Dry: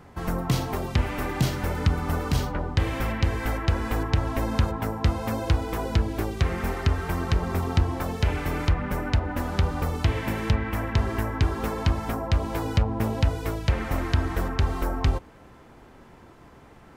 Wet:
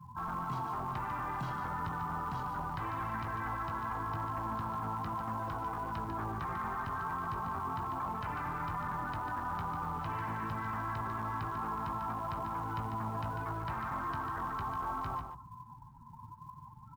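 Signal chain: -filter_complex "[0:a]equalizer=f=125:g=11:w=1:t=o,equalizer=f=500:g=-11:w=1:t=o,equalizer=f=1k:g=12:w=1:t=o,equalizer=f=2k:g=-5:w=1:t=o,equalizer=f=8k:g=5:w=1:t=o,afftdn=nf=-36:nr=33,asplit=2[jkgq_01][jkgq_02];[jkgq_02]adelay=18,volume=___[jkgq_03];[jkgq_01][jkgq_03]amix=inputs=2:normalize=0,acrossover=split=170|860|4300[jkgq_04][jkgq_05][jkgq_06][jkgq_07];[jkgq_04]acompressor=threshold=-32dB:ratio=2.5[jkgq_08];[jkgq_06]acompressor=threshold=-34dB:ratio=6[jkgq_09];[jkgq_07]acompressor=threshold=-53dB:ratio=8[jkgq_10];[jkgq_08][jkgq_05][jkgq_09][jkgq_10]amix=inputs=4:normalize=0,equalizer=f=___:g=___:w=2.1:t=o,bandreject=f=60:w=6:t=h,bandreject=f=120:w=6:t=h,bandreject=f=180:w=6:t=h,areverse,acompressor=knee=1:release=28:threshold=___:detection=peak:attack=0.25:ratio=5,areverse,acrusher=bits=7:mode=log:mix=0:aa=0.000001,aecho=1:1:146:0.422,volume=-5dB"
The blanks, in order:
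-11dB, 1.4k, 13, -30dB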